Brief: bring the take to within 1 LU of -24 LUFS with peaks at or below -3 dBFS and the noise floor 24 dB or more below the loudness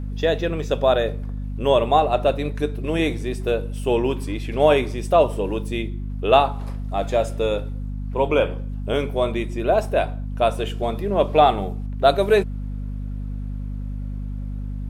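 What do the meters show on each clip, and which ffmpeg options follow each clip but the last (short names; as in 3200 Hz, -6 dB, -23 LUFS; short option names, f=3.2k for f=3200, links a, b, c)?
hum 50 Hz; harmonics up to 250 Hz; hum level -26 dBFS; loudness -22.5 LUFS; peak -2.0 dBFS; loudness target -24.0 LUFS
-> -af "bandreject=f=50:t=h:w=4,bandreject=f=100:t=h:w=4,bandreject=f=150:t=h:w=4,bandreject=f=200:t=h:w=4,bandreject=f=250:t=h:w=4"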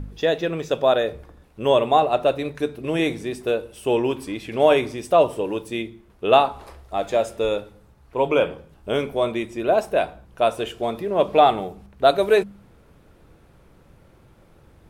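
hum none; loudness -22.0 LUFS; peak -2.5 dBFS; loudness target -24.0 LUFS
-> -af "volume=-2dB"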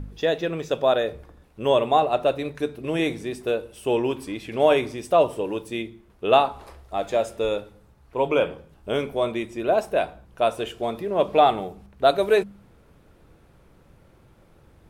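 loudness -24.0 LUFS; peak -4.5 dBFS; noise floor -56 dBFS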